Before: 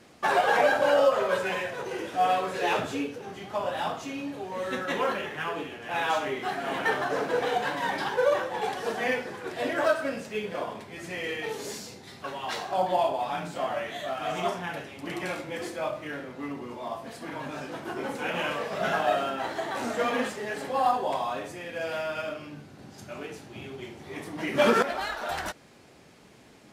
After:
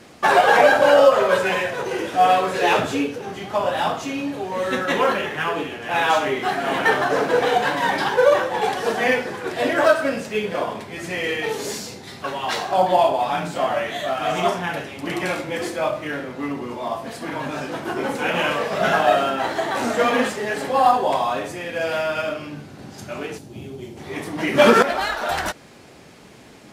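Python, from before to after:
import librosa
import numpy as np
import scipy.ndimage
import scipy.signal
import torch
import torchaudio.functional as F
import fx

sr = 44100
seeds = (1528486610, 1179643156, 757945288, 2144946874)

y = fx.peak_eq(x, sr, hz=1700.0, db=-13.0, octaves=2.8, at=(23.37, 23.96), fade=0.02)
y = y * librosa.db_to_amplitude(8.5)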